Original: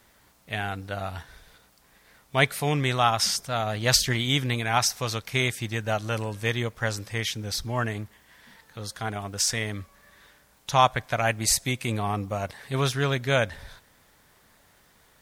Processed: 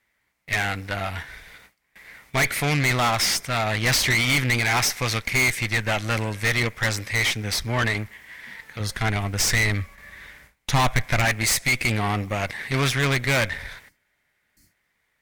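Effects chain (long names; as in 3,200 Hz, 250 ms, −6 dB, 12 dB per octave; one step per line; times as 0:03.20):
parametric band 2,100 Hz +14.5 dB 0.64 octaves
noise gate with hold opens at −42 dBFS
tube saturation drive 25 dB, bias 0.65
0:08.80–0:11.25: low-shelf EQ 120 Hz +11 dB
0:13.92–0:14.71: healed spectral selection 380–4,100 Hz after
level +7.5 dB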